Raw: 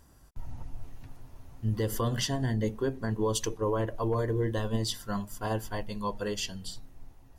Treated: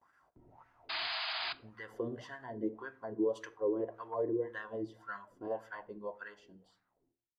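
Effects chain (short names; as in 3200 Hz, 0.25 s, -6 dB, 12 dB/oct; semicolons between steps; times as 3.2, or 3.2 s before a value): ending faded out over 1.80 s; gate with hold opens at -50 dBFS; bell 2100 Hz +4.5 dB 0.28 oct; in parallel at -2.5 dB: compressor, threshold -44 dBFS, peak gain reduction 18 dB; on the sum: wah 1.8 Hz 320–1600 Hz, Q 4.7; painted sound noise, 0.89–1.53, 620–5000 Hz -39 dBFS; on a send at -14.5 dB: reverb RT60 0.45 s, pre-delay 3 ms; on the sum: gain +1.5 dB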